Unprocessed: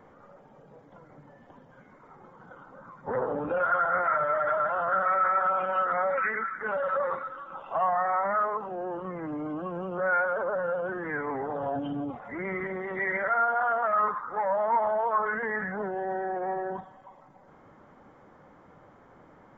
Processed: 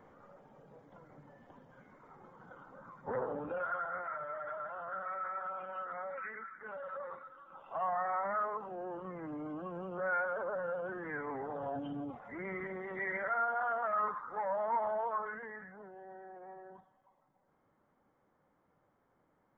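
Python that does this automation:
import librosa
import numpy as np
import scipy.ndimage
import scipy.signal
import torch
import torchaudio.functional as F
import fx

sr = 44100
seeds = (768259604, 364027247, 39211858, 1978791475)

y = fx.gain(x, sr, db=fx.line((2.96, -5.0), (4.11, -15.0), (7.35, -15.0), (7.92, -8.0), (15.03, -8.0), (15.73, -19.5)))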